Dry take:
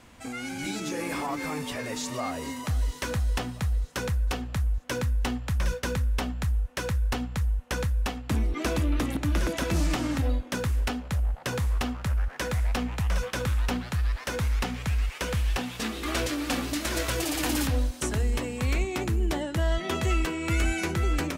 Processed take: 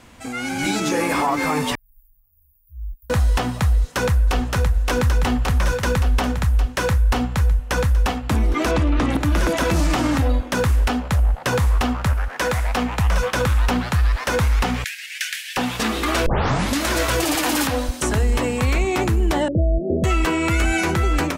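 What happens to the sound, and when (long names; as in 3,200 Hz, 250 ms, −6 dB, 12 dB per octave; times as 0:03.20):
0:01.75–0:03.10: inverse Chebyshev band-stop filter 160–6,800 Hz, stop band 70 dB
0:03.74–0:04.47: delay throw 570 ms, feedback 75%, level −4.5 dB
0:08.71–0:09.15: high-frequency loss of the air 75 metres
0:12.13–0:12.98: low-shelf EQ 180 Hz −7 dB
0:14.84–0:15.57: Butterworth high-pass 1,600 Hz 72 dB per octave
0:16.26: tape start 0.52 s
0:17.35–0:17.89: high-pass filter 260 Hz 6 dB per octave
0:19.48–0:20.04: Butterworth low-pass 630 Hz 72 dB per octave
whole clip: automatic gain control gain up to 4.5 dB; dynamic equaliser 960 Hz, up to +5 dB, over −41 dBFS, Q 0.87; brickwall limiter −16.5 dBFS; level +5.5 dB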